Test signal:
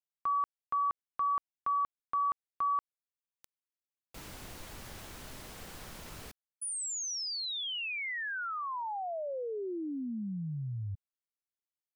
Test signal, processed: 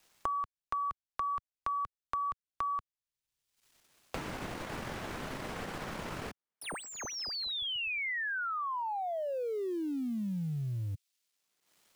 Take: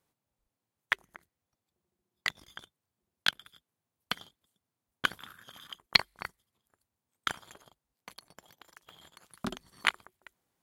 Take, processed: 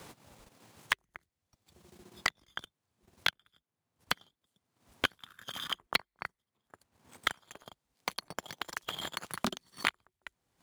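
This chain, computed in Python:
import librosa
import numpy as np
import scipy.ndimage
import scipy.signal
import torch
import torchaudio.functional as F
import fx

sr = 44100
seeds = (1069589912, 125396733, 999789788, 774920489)

y = scipy.ndimage.median_filter(x, 3, mode='constant')
y = fx.transient(y, sr, attack_db=1, sustain_db=-11)
y = fx.band_squash(y, sr, depth_pct=100)
y = y * 10.0 ** (1.0 / 20.0)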